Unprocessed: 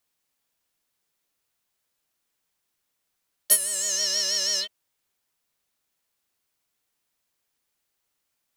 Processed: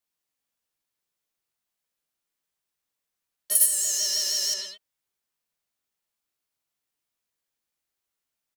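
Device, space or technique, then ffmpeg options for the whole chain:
slapback doubling: -filter_complex "[0:a]asplit=3[link_01][link_02][link_03];[link_02]adelay=18,volume=-5dB[link_04];[link_03]adelay=102,volume=-4.5dB[link_05];[link_01][link_04][link_05]amix=inputs=3:normalize=0,asettb=1/sr,asplit=3[link_06][link_07][link_08];[link_06]atrim=end=3.554[link_09];[link_07]atrim=start=3.55:end=4.54,asetpts=PTS-STARTPTS,afade=type=in:duration=0.004:curve=qsin,afade=type=out:start_time=0.986:duration=0.004:curve=qsin,aemphasis=mode=production:type=50fm[link_10];[link_08]atrim=start=4.536[link_11];[link_09][link_10]acrossfade=duration=0.004:curve1=hsin:curve2=qsin[link_12];[link_12][link_11]acrossfade=duration=0.004:curve1=qsin:curve2=hsin,volume=-9dB"

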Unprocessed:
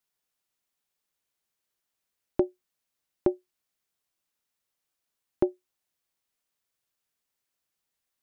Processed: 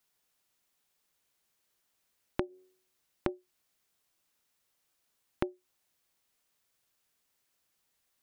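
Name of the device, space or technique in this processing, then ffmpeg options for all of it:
serial compression, leveller first: -filter_complex "[0:a]asettb=1/sr,asplit=3[link_01][link_02][link_03];[link_01]atrim=end=2.454[link_04];[link_02]atrim=start=2.45:end=3.29,asetpts=PTS-STARTPTS,afade=type=in:duration=0.004:curve=qsin,afade=type=out:start_time=0.836:duration=0.004:curve=qsin,bandreject=frequency=92.73:width_type=h:width=4,bandreject=frequency=185.46:width_type=h:width=4,bandreject=frequency=278.19:width_type=h:width=4,bandreject=frequency=370.92:width_type=h:width=4,bandreject=frequency=463.65:width_type=h:width=4,bandreject=frequency=556.38:width_type=h:width=4,bandreject=frequency=649.11:width_type=h:width=4,bandreject=frequency=741.84:width_type=h:width=4,bandreject=frequency=834.57:width_type=h:width=4,bandreject=frequency=927.3:width_type=h:width=4,bandreject=frequency=1020.03:width_type=h:width=4,bandreject=frequency=1112.76:width_type=h:width=4,bandreject=frequency=1205.49:width_type=h:width=4,bandreject=frequency=1298.22:width_type=h:width=4,bandreject=frequency=1390.95:width_type=h:width=4,bandreject=frequency=1483.68:width_type=h:width=4,bandreject=frequency=1576.41:width_type=h:width=4,bandreject=frequency=1669.14:width_type=h:width=4,bandreject=frequency=1761.87:width_type=h:width=4,bandreject=frequency=1854.6:width_type=h:width=4,bandreject=frequency=1947.33:width_type=h:width=4[link_05];[link_03]atrim=start=3.286[link_06];[link_04][link_05]acrossfade=duration=0.004:curve1=hsin:curve2=qsin[link_07];[link_07][link_06]acrossfade=duration=0.004:curve1=qsin:curve2=hsin,acompressor=threshold=-26dB:ratio=2.5,acompressor=threshold=-35dB:ratio=6,volume=6dB"

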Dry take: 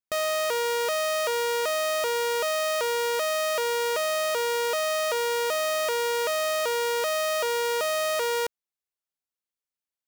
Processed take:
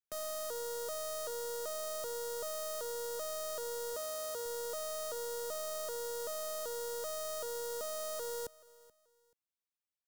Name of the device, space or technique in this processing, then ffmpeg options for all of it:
one-band saturation: -filter_complex "[0:a]acrossover=split=250|4800[link_01][link_02][link_03];[link_02]asoftclip=type=tanh:threshold=-32dB[link_04];[link_01][link_04][link_03]amix=inputs=3:normalize=0,asettb=1/sr,asplit=3[link_05][link_06][link_07];[link_05]atrim=end=3.944[link_08];[link_06]atrim=start=3.94:end=4.46,asetpts=PTS-STARTPTS,afade=type=in:duration=0.004:curve=qsin,afade=type=out:start_time=0.516:duration=0.004:curve=qsin,highpass=43[link_09];[link_07]atrim=start=4.456[link_10];[link_08][link_09]acrossfade=duration=0.004:curve1=hsin:curve2=qsin[link_11];[link_11][link_10]acrossfade=duration=0.004:curve1=qsin:curve2=hsin,aecho=1:1:431|862:0.0841|0.0227,volume=-7dB"

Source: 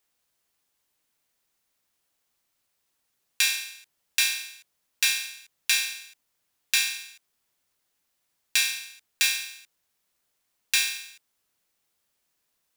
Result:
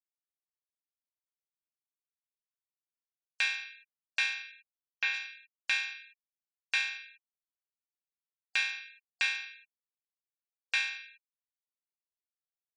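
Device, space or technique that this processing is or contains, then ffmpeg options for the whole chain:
hearing-loss simulation: -filter_complex "[0:a]asettb=1/sr,asplit=3[link_01][link_02][link_03];[link_01]atrim=end=4.524[link_04];[link_02]atrim=start=4.52:end=5.14,asetpts=PTS-STARTPTS,afade=type=in:duration=0.004:curve=qsin,afade=type=out:start_time=0.616:duration=0.004:curve=qsin,acrossover=split=3700[link_05][link_06];[link_06]acompressor=threshold=-31dB:ratio=4:attack=1:release=60[link_07];[link_05][link_07]amix=inputs=2:normalize=0[link_08];[link_03]atrim=start=5.136[link_09];[link_04][link_08]acrossfade=duration=0.004:curve1=hsin:curve2=qsin[link_10];[link_10][link_09]acrossfade=duration=0.004:curve1=qsin:curve2=hsin,lowpass=2300,agate=range=-33dB:threshold=-55dB:ratio=3:detection=peak,afftfilt=real='re*gte(hypot(re,im),0.00282)':imag='im*gte(hypot(re,im),0.00282)':win_size=1024:overlap=0.75"

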